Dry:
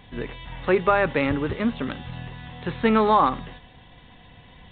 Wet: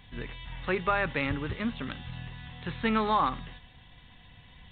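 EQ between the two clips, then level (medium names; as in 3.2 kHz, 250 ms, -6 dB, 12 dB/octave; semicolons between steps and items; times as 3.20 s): peaking EQ 460 Hz -9 dB 2.6 oct; -2.0 dB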